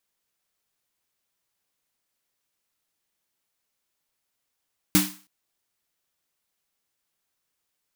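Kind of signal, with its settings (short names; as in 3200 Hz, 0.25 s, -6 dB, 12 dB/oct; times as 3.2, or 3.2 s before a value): snare drum length 0.32 s, tones 190 Hz, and 300 Hz, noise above 840 Hz, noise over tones -1 dB, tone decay 0.32 s, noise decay 0.39 s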